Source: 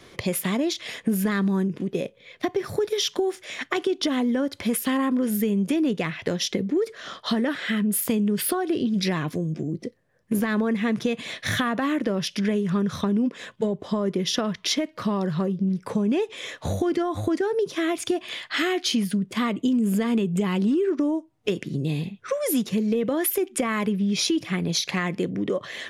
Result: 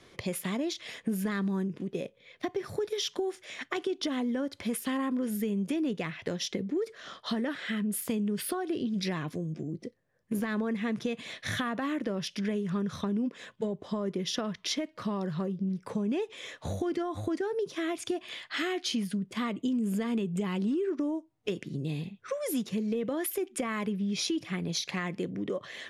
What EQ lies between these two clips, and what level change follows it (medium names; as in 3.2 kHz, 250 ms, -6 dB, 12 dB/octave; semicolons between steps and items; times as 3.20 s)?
low-pass 12 kHz 12 dB/octave; -7.5 dB